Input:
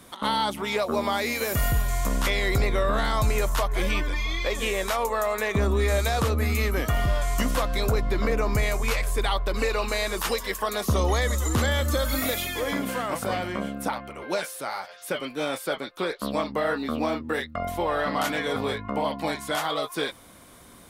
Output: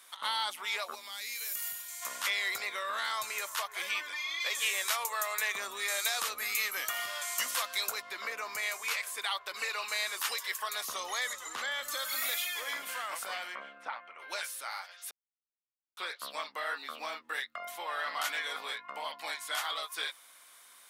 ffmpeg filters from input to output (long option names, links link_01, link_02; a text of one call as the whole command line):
ffmpeg -i in.wav -filter_complex "[0:a]asplit=3[link_01][link_02][link_03];[link_01]afade=type=out:start_time=0.94:duration=0.02[link_04];[link_02]equalizer=frequency=820:width=0.37:gain=-15,afade=type=in:start_time=0.94:duration=0.02,afade=type=out:start_time=2.01:duration=0.02[link_05];[link_03]afade=type=in:start_time=2.01:duration=0.02[link_06];[link_04][link_05][link_06]amix=inputs=3:normalize=0,asettb=1/sr,asplit=3[link_07][link_08][link_09];[link_07]atrim=end=2.754[link_10];[link_08]atrim=start=2.75:end=3.6,asetpts=PTS-STARTPTS,afade=type=in:duration=0.004:curve=qsin,afade=type=out:start_time=0.846:duration=0.004:curve=qsin,asuperstop=centerf=730:order=4:qfactor=7.8[link_11];[link_09]atrim=start=3.596[link_12];[link_10][link_11]acrossfade=duration=0.004:curve1=hsin:curve2=qsin[link_13];[link_13][link_12]acrossfade=duration=0.004:curve1=qsin:curve2=hsin,asettb=1/sr,asplit=3[link_14][link_15][link_16];[link_14]atrim=end=4.404[link_17];[link_15]atrim=start=4.4:end=8.02,asetpts=PTS-STARTPTS,afade=type=in:duration=0.004:curve=qsin,afade=type=out:start_time=3.616:duration=0.004:curve=qsin,highshelf=frequency=3500:gain=6.5[link_18];[link_16]atrim=start=8.016[link_19];[link_17][link_18]acrossfade=duration=0.004:curve1=hsin:curve2=qsin[link_20];[link_20][link_19]acrossfade=duration=0.004:curve1=qsin:curve2=hsin,asettb=1/sr,asplit=3[link_21][link_22][link_23];[link_21]atrim=end=11.334[link_24];[link_22]atrim=start=11.33:end=11.83,asetpts=PTS-STARTPTS,afade=type=in:duration=0.004:curve=qsin,afade=type=out:start_time=0.496:duration=0.004:curve=qsin,aemphasis=mode=reproduction:type=50kf[link_25];[link_23]atrim=start=11.826[link_26];[link_24][link_25]acrossfade=duration=0.004:curve1=hsin:curve2=qsin[link_27];[link_27][link_26]acrossfade=duration=0.004:curve1=qsin:curve2=hsin,asplit=3[link_28][link_29][link_30];[link_28]afade=type=out:start_time=13.54:duration=0.02[link_31];[link_29]highpass=110,lowpass=2400,afade=type=in:start_time=13.54:duration=0.02,afade=type=out:start_time=14.18:duration=0.02[link_32];[link_30]afade=type=in:start_time=14.18:duration=0.02[link_33];[link_31][link_32][link_33]amix=inputs=3:normalize=0,asplit=3[link_34][link_35][link_36];[link_34]atrim=end=15.11,asetpts=PTS-STARTPTS,afade=type=out:start_time=15.106:duration=0.004:curve=hsin[link_37];[link_35]atrim=start=15.11:end=15.97,asetpts=PTS-STARTPTS,volume=0[link_38];[link_36]atrim=start=15.97,asetpts=PTS-STARTPTS,afade=type=in:duration=0.004:curve=hsin[link_39];[link_37][link_38][link_39]concat=n=3:v=0:a=1,highpass=1300,volume=-3dB" out.wav